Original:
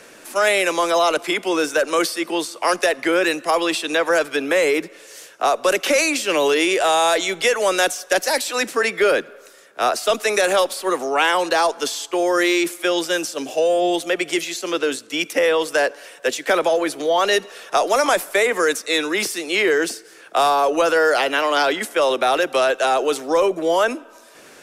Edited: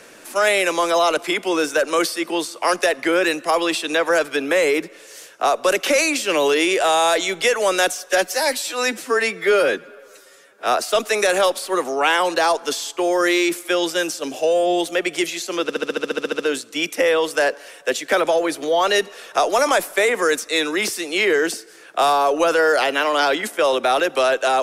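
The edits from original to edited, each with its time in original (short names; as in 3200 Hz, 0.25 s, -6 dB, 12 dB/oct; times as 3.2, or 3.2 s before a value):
8.09–9.8 stretch 1.5×
14.77 stutter 0.07 s, 12 plays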